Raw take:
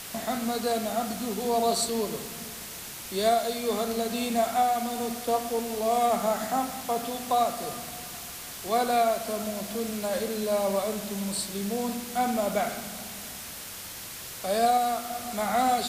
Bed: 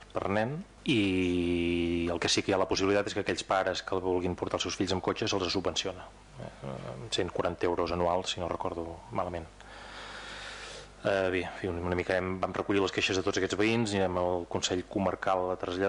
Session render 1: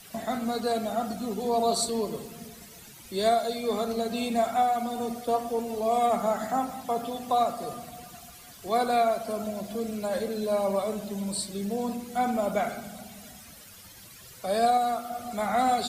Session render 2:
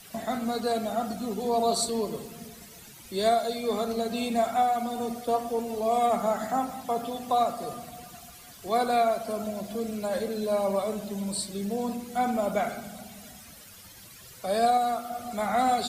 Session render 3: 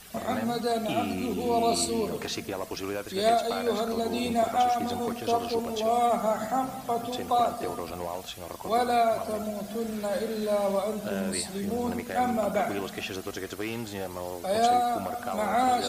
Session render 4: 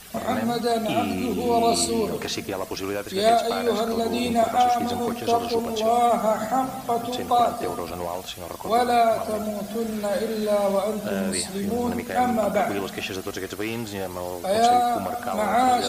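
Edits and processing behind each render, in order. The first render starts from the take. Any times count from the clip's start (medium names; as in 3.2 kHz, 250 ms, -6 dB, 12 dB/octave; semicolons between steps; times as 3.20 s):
noise reduction 13 dB, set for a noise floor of -40 dBFS
no audible change
add bed -6.5 dB
trim +4.5 dB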